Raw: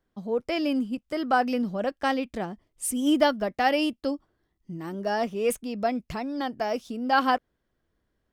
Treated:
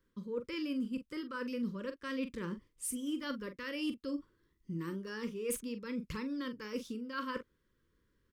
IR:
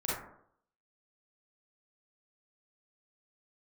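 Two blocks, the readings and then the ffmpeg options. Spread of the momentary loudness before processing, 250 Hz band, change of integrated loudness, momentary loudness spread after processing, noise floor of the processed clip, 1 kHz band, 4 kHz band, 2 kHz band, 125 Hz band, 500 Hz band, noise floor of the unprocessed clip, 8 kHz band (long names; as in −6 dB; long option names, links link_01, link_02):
10 LU, −9.5 dB, −12.5 dB, 5 LU, −78 dBFS, −21.0 dB, −12.0 dB, −13.0 dB, −5.0 dB, −14.0 dB, −77 dBFS, −7.0 dB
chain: -filter_complex "[0:a]areverse,acompressor=threshold=-35dB:ratio=6,areverse,asuperstop=centerf=720:order=8:qfactor=1.8,asplit=2[link_01][link_02];[link_02]adelay=42,volume=-10dB[link_03];[link_01][link_03]amix=inputs=2:normalize=0"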